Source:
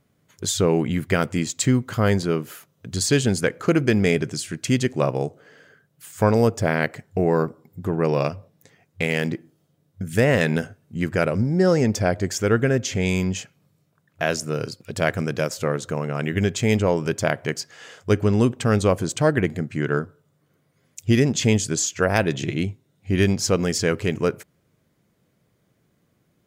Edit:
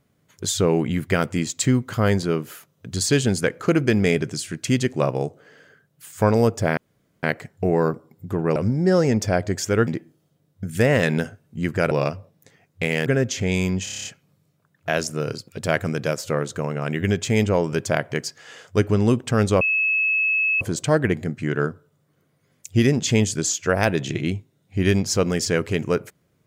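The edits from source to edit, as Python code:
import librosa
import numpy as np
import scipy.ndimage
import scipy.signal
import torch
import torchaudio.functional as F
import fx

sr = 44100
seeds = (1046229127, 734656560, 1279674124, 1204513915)

y = fx.edit(x, sr, fx.insert_room_tone(at_s=6.77, length_s=0.46),
    fx.swap(start_s=8.1, length_s=1.15, other_s=11.29, other_length_s=1.31),
    fx.stutter(start_s=13.38, slice_s=0.03, count=8),
    fx.insert_tone(at_s=18.94, length_s=1.0, hz=2590.0, db=-17.5), tone=tone)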